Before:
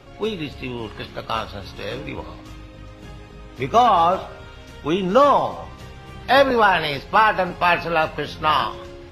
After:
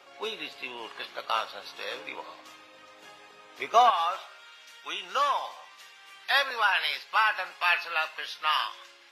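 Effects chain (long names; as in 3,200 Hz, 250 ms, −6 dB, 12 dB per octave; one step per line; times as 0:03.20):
high-pass filter 700 Hz 12 dB per octave, from 0:03.90 1,500 Hz
level −2.5 dB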